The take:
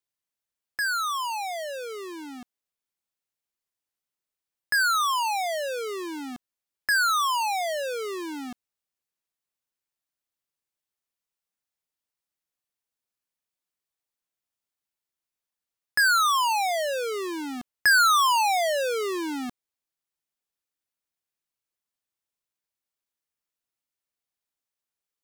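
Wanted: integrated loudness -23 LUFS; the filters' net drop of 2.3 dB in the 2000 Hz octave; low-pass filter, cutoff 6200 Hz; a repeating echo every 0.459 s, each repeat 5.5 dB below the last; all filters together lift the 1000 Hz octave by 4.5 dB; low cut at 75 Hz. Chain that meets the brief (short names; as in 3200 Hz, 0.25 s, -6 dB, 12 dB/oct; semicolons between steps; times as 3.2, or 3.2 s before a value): HPF 75 Hz; LPF 6200 Hz; bell 1000 Hz +8 dB; bell 2000 Hz -8 dB; feedback echo 0.459 s, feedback 53%, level -5.5 dB; gain -1 dB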